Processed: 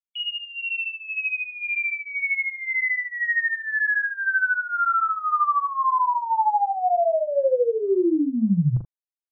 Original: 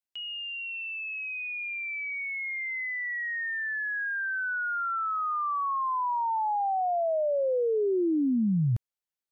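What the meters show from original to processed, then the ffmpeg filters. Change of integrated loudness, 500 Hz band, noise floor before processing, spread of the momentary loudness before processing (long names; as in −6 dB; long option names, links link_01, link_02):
+6.5 dB, +5.0 dB, below −85 dBFS, 7 LU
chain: -af "afftfilt=real='re*gte(hypot(re,im),0.00355)':imag='im*gte(hypot(re,im),0.00355)':win_size=1024:overlap=0.75,highshelf=frequency=2600:gain=-10.5,aecho=1:1:5.9:0.76,acompressor=threshold=-29dB:ratio=6,aecho=1:1:40.82|78.72:0.794|0.251,volume=7.5dB"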